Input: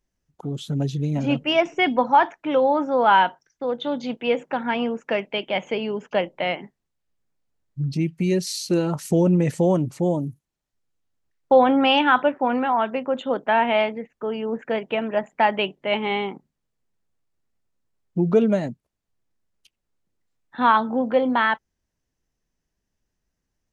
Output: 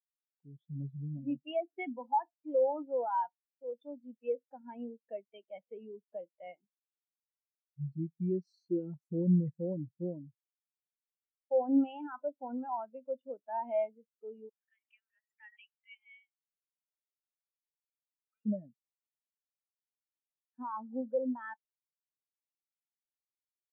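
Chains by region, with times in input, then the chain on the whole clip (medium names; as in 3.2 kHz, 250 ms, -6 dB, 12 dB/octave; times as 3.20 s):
14.49–18.46 s: high-pass 1.4 kHz 24 dB/octave + swell ahead of each attack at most 110 dB/s
whole clip: peak limiter -12 dBFS; spectral contrast expander 2.5:1; trim -7 dB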